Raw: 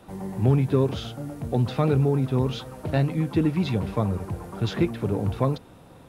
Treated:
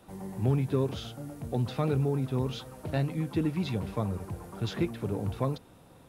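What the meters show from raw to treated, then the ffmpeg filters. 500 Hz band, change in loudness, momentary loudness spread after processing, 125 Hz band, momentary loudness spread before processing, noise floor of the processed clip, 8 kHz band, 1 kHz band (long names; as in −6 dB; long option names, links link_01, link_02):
−6.5 dB, −6.5 dB, 11 LU, −6.5 dB, 12 LU, −56 dBFS, can't be measured, −6.5 dB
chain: -af "highshelf=frequency=5200:gain=5.5,volume=-6.5dB"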